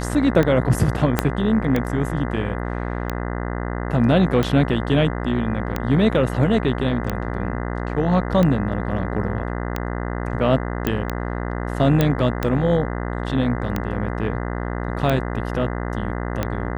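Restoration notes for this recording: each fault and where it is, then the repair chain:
buzz 60 Hz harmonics 34 -26 dBFS
tick 45 rpm -9 dBFS
1.19 s: pop -2 dBFS
10.87 s: pop -8 dBFS
12.01 s: pop -5 dBFS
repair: de-click; de-hum 60 Hz, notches 34

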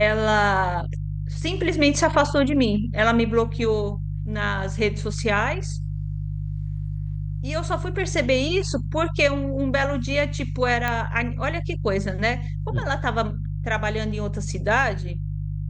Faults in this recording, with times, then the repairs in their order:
hum 50 Hz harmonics 3 -28 dBFS
10.88 s: pop -11 dBFS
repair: de-click; de-hum 50 Hz, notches 3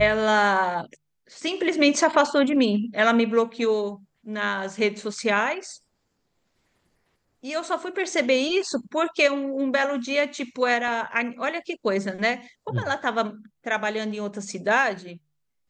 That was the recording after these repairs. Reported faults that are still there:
nothing left

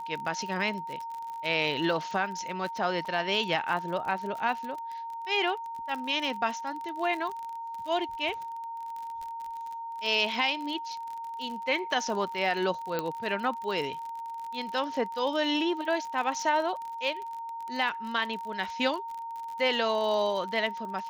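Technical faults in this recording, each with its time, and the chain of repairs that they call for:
crackle 43 per s -35 dBFS
whine 920 Hz -35 dBFS
3.05–3.06 s: dropout 5.2 ms
12.99 s: pop -16 dBFS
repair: de-click; band-stop 920 Hz, Q 30; interpolate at 3.05 s, 5.2 ms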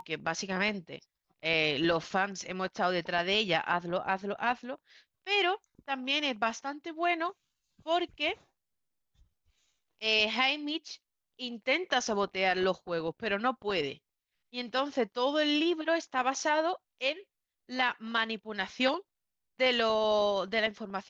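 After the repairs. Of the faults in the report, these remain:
nothing left

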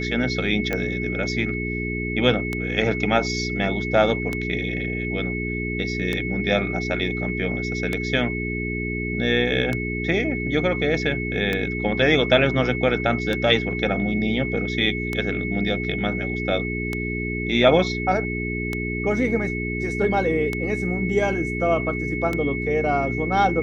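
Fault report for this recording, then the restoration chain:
hum 60 Hz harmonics 7 -28 dBFS
tick 33 1/3 rpm -11 dBFS
whine 2.2 kHz -29 dBFS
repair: de-click; band-stop 2.2 kHz, Q 30; de-hum 60 Hz, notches 7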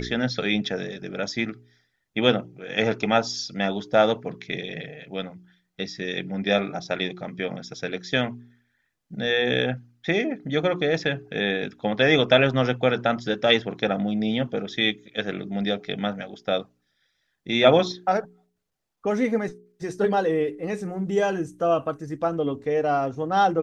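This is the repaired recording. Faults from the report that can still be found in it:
nothing left

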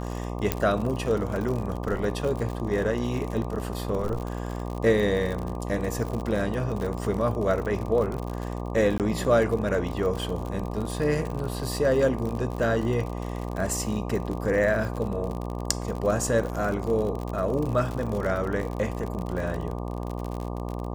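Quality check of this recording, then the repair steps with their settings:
buzz 60 Hz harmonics 20 -32 dBFS
crackle 52 per s -30 dBFS
0.52 s: pop -7 dBFS
8.98–9.00 s: dropout 18 ms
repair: de-click; de-hum 60 Hz, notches 20; interpolate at 8.98 s, 18 ms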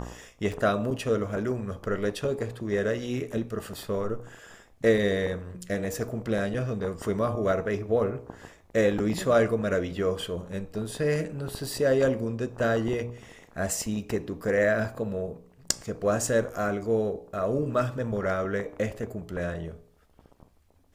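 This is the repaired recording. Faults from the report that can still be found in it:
0.52 s: pop

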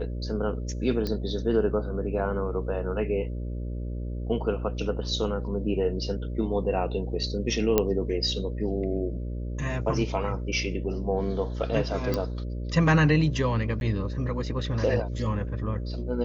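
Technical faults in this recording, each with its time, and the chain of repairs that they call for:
buzz 60 Hz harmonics 10 -32 dBFS
1.07 s: pop -17 dBFS
7.78 s: pop -7 dBFS
12.14 s: pop -14 dBFS
13.80–13.81 s: dropout 11 ms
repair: de-click; de-hum 60 Hz, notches 10; interpolate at 13.80 s, 11 ms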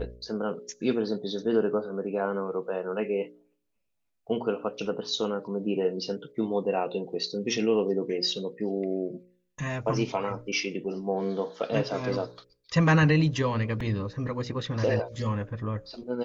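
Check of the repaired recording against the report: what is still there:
nothing left

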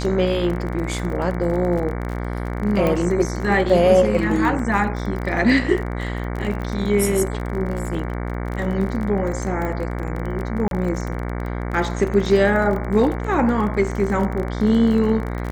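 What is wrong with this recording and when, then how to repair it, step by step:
buzz 60 Hz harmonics 38 -26 dBFS
crackle 32 per s -27 dBFS
2.87 s: pop -10 dBFS
9.65 s: pop -16 dBFS
10.68–10.71 s: dropout 32 ms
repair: de-click; de-hum 60 Hz, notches 38; interpolate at 10.68 s, 32 ms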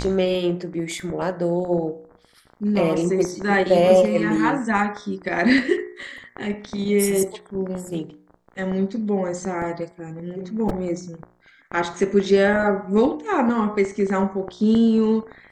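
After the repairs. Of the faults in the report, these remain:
nothing left

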